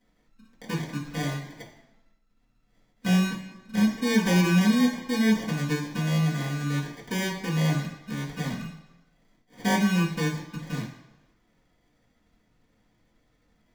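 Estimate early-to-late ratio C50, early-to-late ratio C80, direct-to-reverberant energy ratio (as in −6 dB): 6.0 dB, 9.5 dB, −6.5 dB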